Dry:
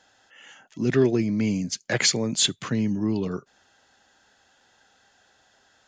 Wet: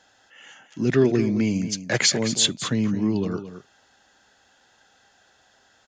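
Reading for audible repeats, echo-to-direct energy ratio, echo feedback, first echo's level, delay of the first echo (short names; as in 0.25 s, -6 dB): 1, -11.5 dB, no steady repeat, -11.5 dB, 0.219 s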